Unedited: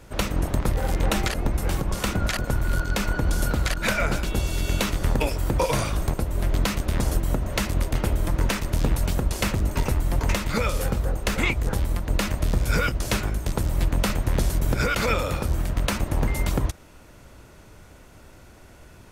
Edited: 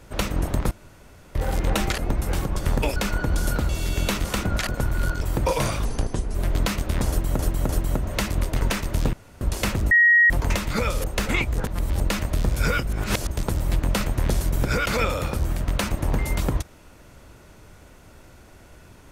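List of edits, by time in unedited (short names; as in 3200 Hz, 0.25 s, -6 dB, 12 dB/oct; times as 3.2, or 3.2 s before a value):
0.71 insert room tone 0.64 s
1.95–2.91 swap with 4.97–5.34
3.64–4.41 cut
5.98–6.34 speed 72%
7.08–7.38 loop, 3 plays
8–8.4 cut
8.92–9.2 room tone
9.7–10.09 bleep 1890 Hz -12 dBFS
10.83–11.13 cut
11.75–12.09 reverse
12.96–13.4 reverse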